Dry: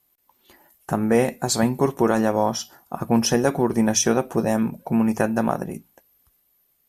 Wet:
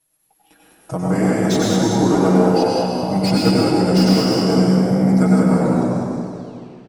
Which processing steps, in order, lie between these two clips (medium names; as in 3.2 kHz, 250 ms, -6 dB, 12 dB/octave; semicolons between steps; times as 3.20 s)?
tape stop on the ending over 1.54 s; comb 5.3 ms, depth 89%; pitch shift -3 st; frequency-shifting echo 199 ms, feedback 45%, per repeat +63 Hz, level -5.5 dB; reverberation RT60 2.0 s, pre-delay 88 ms, DRR -4 dB; slew-rate limiter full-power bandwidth 560 Hz; trim -4.5 dB